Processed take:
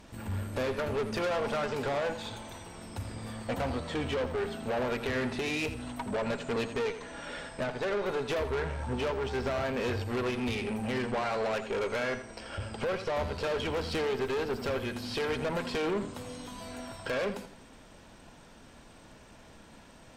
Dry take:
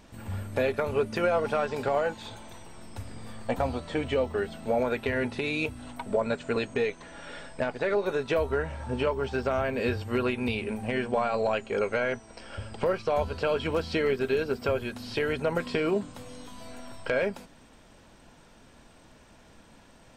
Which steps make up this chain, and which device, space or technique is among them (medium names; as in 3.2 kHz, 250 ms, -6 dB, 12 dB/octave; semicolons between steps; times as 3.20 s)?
rockabilly slapback (valve stage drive 31 dB, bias 0.45; tape echo 84 ms, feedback 35%, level -9.5 dB, low-pass 5.7 kHz); trim +3 dB